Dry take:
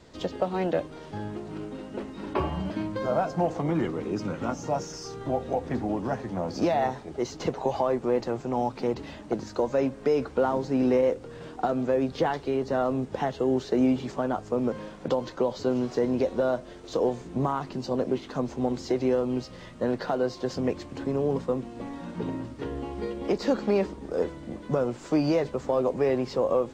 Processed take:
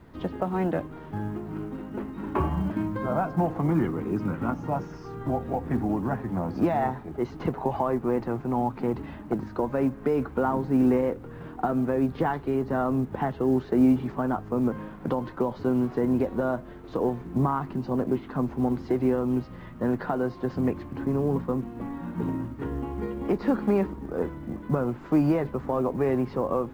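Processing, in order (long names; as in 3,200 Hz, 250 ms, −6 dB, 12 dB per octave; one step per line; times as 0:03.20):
low-pass filter 1,500 Hz 12 dB per octave
parametric band 540 Hz −9.5 dB 0.98 octaves
log-companded quantiser 8 bits
level +5 dB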